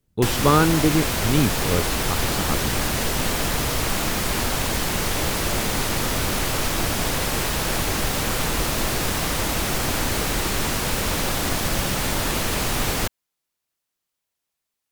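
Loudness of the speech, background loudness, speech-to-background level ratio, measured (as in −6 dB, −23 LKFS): −23.0 LKFS, −23.0 LKFS, 0.0 dB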